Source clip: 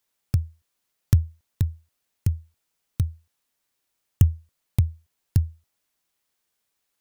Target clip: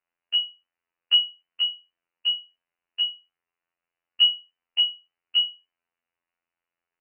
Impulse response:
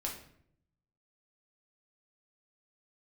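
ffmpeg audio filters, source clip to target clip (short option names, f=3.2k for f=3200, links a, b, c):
-af "afftfilt=real='hypot(re,im)*cos(PI*b)':imag='0':win_size=2048:overlap=0.75,lowpass=f=2.6k:t=q:w=0.5098,lowpass=f=2.6k:t=q:w=0.6013,lowpass=f=2.6k:t=q:w=0.9,lowpass=f=2.6k:t=q:w=2.563,afreqshift=-3000"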